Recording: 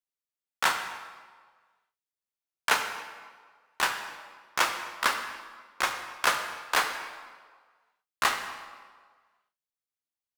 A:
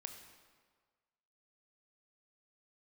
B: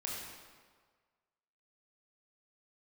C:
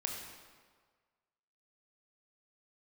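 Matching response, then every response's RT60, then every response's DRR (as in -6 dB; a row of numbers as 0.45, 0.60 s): A; 1.6, 1.6, 1.6 s; 5.5, -4.0, 0.5 dB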